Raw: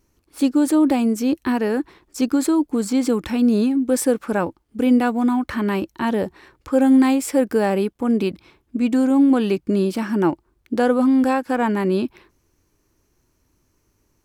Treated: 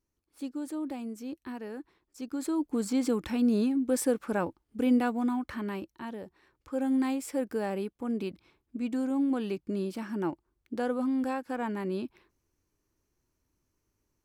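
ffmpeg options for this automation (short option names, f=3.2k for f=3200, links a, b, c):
-af "volume=-1.5dB,afade=t=in:st=2.26:d=0.51:silence=0.298538,afade=t=out:st=4.96:d=1.24:silence=0.266073,afade=t=in:st=6.2:d=0.83:silence=0.446684"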